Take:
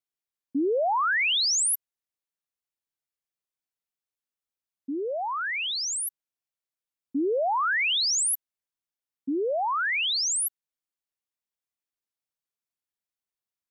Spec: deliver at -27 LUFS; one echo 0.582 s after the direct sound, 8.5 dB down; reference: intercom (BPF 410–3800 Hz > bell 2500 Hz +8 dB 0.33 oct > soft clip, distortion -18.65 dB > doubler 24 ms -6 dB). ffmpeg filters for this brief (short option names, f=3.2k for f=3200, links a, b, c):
-filter_complex "[0:a]highpass=410,lowpass=3.8k,equalizer=f=2.5k:t=o:w=0.33:g=8,aecho=1:1:582:0.376,asoftclip=threshold=-18dB,asplit=2[a][b];[b]adelay=24,volume=-6dB[c];[a][c]amix=inputs=2:normalize=0,volume=-1dB"